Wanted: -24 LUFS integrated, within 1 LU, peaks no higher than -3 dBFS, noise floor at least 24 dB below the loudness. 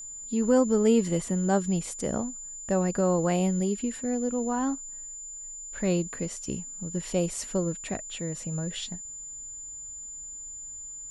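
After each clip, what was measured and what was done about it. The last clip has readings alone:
steady tone 7.1 kHz; tone level -38 dBFS; loudness -29.0 LUFS; peak level -11.5 dBFS; loudness target -24.0 LUFS
-> band-stop 7.1 kHz, Q 30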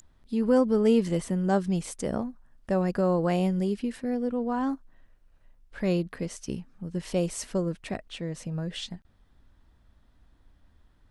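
steady tone not found; loudness -28.5 LUFS; peak level -12.0 dBFS; loudness target -24.0 LUFS
-> trim +4.5 dB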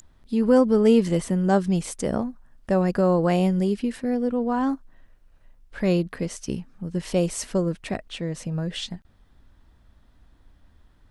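loudness -24.0 LUFS; peak level -7.5 dBFS; noise floor -58 dBFS

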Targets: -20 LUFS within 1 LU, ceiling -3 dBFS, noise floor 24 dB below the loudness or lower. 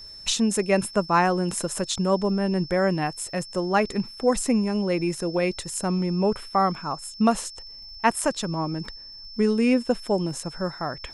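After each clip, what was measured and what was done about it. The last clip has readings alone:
tick rate 22 per s; steady tone 5.3 kHz; tone level -40 dBFS; loudness -24.5 LUFS; peak level -7.0 dBFS; loudness target -20.0 LUFS
-> de-click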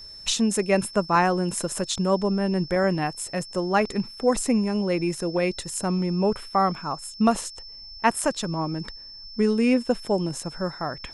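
tick rate 0 per s; steady tone 5.3 kHz; tone level -40 dBFS
-> band-stop 5.3 kHz, Q 30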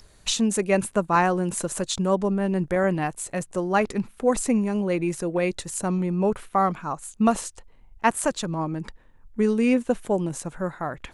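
steady tone not found; loudness -25.0 LUFS; peak level -7.0 dBFS; loudness target -20.0 LUFS
-> trim +5 dB; peak limiter -3 dBFS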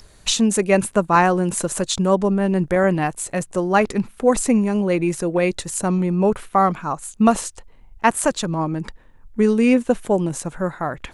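loudness -20.0 LUFS; peak level -3.0 dBFS; noise floor -48 dBFS

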